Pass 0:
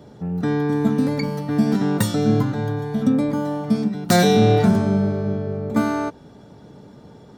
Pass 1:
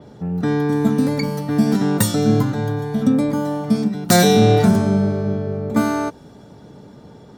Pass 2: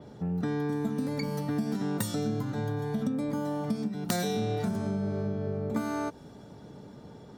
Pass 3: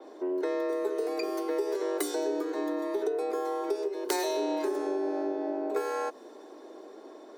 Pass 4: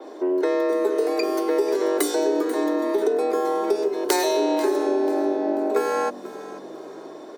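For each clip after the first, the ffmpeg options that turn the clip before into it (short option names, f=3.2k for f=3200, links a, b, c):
-af "adynamicequalizer=threshold=0.00708:dfrequency=5400:dqfactor=0.7:tfrequency=5400:tqfactor=0.7:attack=5:release=100:ratio=0.375:range=3.5:mode=boostabove:tftype=highshelf,volume=2dB"
-af "acompressor=threshold=-22dB:ratio=6,volume=-5.5dB"
-af "afreqshift=190"
-filter_complex "[0:a]asplit=4[a][b][c][d];[b]adelay=489,afreqshift=-45,volume=-16dB[e];[c]adelay=978,afreqshift=-90,volume=-25.4dB[f];[d]adelay=1467,afreqshift=-135,volume=-34.7dB[g];[a][e][f][g]amix=inputs=4:normalize=0,volume=8.5dB"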